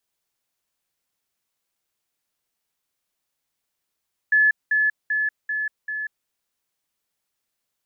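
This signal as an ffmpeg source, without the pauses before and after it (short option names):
-f lavfi -i "aevalsrc='pow(10,(-13.5-3*floor(t/0.39))/20)*sin(2*PI*1720*t)*clip(min(mod(t,0.39),0.19-mod(t,0.39))/0.005,0,1)':d=1.95:s=44100"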